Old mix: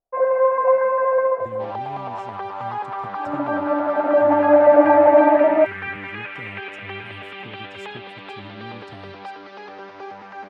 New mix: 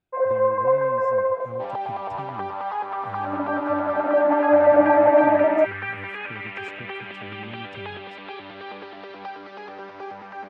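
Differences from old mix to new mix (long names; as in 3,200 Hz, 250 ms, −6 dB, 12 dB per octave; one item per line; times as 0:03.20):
speech: entry −1.15 s
first sound −3.0 dB
master: add high-shelf EQ 6,100 Hz −8.5 dB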